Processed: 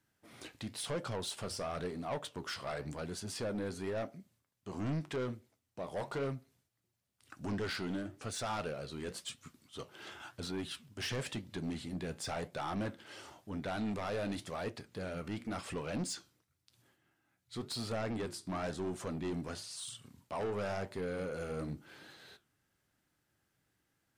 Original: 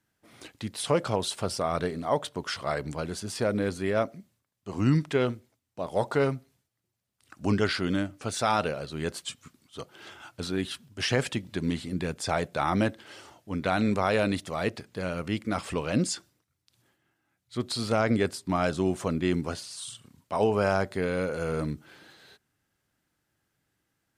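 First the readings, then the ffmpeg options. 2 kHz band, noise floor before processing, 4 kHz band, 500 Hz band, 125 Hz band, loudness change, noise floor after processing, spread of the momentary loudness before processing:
-11.0 dB, -79 dBFS, -8.0 dB, -11.0 dB, -10.5 dB, -11.0 dB, -81 dBFS, 14 LU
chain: -filter_complex "[0:a]asplit=2[s0][s1];[s1]acompressor=threshold=0.00794:ratio=6,volume=1[s2];[s0][s2]amix=inputs=2:normalize=0,asoftclip=type=tanh:threshold=0.0596,flanger=delay=7.1:depth=9.3:regen=-70:speed=0.95:shape=sinusoidal,volume=0.668"

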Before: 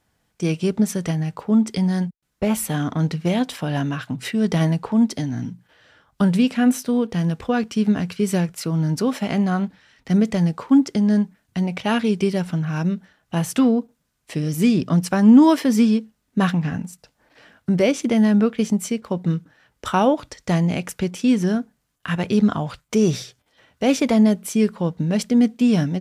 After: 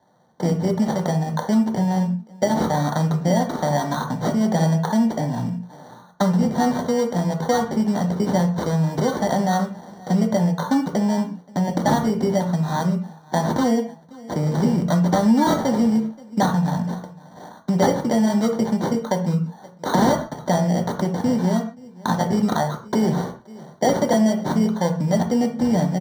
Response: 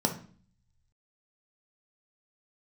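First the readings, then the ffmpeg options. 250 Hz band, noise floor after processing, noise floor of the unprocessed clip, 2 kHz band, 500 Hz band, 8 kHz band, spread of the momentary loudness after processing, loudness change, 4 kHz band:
-2.0 dB, -46 dBFS, -71 dBFS, -1.0 dB, +2.0 dB, -0.5 dB, 7 LU, -1.0 dB, -1.0 dB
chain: -filter_complex "[0:a]lowshelf=f=440:t=q:w=1.5:g=-11.5,acrossover=split=190|1500[s0][s1][s2];[s1]aeval=exprs='(mod(4.73*val(0)+1,2)-1)/4.73':c=same[s3];[s0][s3][s2]amix=inputs=3:normalize=0,asplit=2[s4][s5];[s5]adelay=524.8,volume=0.0447,highshelf=f=4000:g=-11.8[s6];[s4][s6]amix=inputs=2:normalize=0,acrusher=samples=17:mix=1:aa=0.000001[s7];[1:a]atrim=start_sample=2205,atrim=end_sample=6615[s8];[s7][s8]afir=irnorm=-1:irlink=0,acompressor=threshold=0.112:ratio=2,volume=0.841"

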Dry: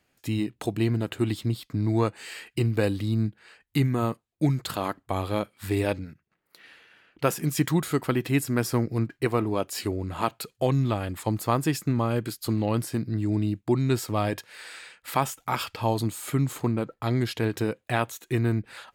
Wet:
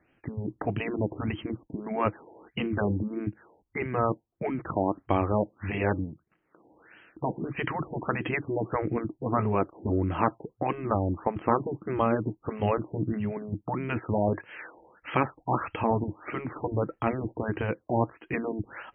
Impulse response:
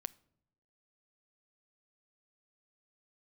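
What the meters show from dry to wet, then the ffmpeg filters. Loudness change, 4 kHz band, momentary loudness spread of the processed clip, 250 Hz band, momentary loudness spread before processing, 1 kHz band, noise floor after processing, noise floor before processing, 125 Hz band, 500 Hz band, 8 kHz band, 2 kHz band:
-3.0 dB, -11.0 dB, 8 LU, -3.5 dB, 6 LU, +1.5 dB, -73 dBFS, -74 dBFS, -6.0 dB, -0.5 dB, under -40 dB, -1.0 dB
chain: -af "equalizer=f=320:t=o:w=0.29:g=8,afftfilt=real='re*lt(hypot(re,im),0.355)':imag='im*lt(hypot(re,im),0.355)':win_size=1024:overlap=0.75,afftfilt=real='re*lt(b*sr/1024,940*pow(3300/940,0.5+0.5*sin(2*PI*1.6*pts/sr)))':imag='im*lt(b*sr/1024,940*pow(3300/940,0.5+0.5*sin(2*PI*1.6*pts/sr)))':win_size=1024:overlap=0.75,volume=1.5"

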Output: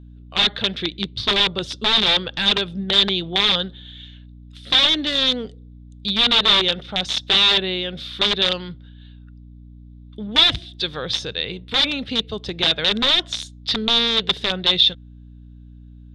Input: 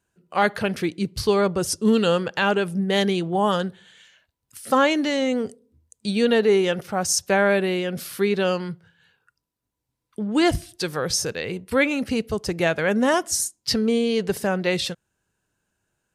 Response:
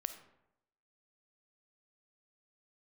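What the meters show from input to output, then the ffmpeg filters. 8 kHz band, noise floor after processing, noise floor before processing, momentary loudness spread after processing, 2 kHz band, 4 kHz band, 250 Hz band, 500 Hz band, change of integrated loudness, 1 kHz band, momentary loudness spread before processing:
-9.5 dB, -42 dBFS, -81 dBFS, 12 LU, +1.5 dB, +15.5 dB, -5.5 dB, -7.0 dB, +4.5 dB, -2.5 dB, 10 LU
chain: -af "aeval=exprs='(mod(5.31*val(0)+1,2)-1)/5.31':c=same,lowpass=f=3600:t=q:w=13,aeval=exprs='val(0)+0.0141*(sin(2*PI*60*n/s)+sin(2*PI*2*60*n/s)/2+sin(2*PI*3*60*n/s)/3+sin(2*PI*4*60*n/s)/4+sin(2*PI*5*60*n/s)/5)':c=same,volume=0.668"

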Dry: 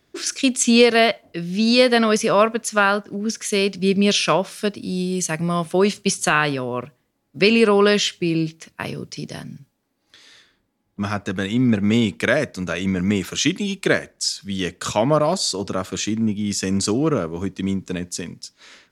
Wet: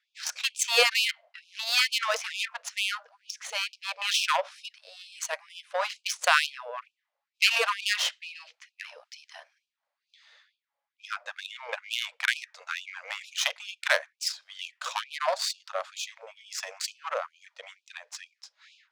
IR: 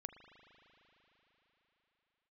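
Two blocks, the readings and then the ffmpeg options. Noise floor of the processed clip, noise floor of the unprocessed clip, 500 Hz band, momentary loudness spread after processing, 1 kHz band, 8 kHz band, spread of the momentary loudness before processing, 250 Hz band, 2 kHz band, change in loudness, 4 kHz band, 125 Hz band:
under -85 dBFS, -69 dBFS, -16.5 dB, 20 LU, -8.5 dB, -8.5 dB, 14 LU, under -40 dB, -4.5 dB, -8.5 dB, -4.0 dB, under -40 dB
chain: -af "aeval=exprs='0.708*(cos(1*acos(clip(val(0)/0.708,-1,1)))-cos(1*PI/2))+0.112*(cos(3*acos(clip(val(0)/0.708,-1,1)))-cos(3*PI/2))+0.0355*(cos(8*acos(clip(val(0)/0.708,-1,1)))-cos(8*PI/2))':c=same,adynamicsmooth=sensitivity=2.5:basefreq=4100,afftfilt=real='re*gte(b*sr/1024,470*pow(2400/470,0.5+0.5*sin(2*PI*2.2*pts/sr)))':imag='im*gte(b*sr/1024,470*pow(2400/470,0.5+0.5*sin(2*PI*2.2*pts/sr)))':win_size=1024:overlap=0.75"

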